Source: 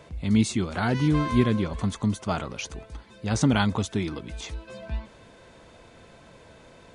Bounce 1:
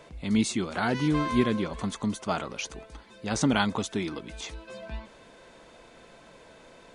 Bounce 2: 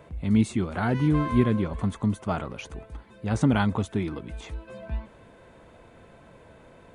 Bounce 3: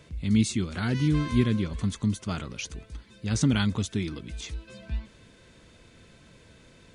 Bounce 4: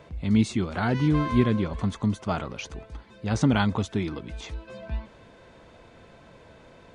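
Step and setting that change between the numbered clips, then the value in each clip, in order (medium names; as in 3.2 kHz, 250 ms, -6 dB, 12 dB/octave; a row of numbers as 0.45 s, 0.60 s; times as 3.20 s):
peaking EQ, frequency: 88 Hz, 5.3 kHz, 770 Hz, 15 kHz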